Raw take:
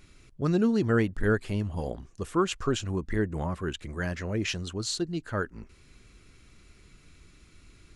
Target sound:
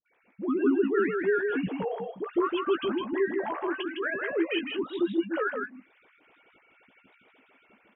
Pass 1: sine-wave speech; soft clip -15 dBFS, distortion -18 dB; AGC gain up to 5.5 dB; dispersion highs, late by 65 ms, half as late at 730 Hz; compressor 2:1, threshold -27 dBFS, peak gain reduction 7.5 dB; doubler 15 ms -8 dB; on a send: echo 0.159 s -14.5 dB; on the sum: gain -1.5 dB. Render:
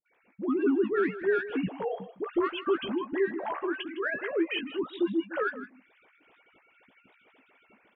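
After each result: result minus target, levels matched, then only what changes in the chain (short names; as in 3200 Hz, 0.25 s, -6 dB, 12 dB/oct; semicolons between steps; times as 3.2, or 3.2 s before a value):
soft clip: distortion +12 dB; echo-to-direct -10 dB
change: soft clip -7 dBFS, distortion -30 dB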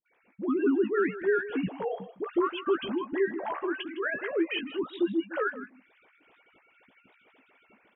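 echo-to-direct -10 dB
change: echo 0.159 s -4.5 dB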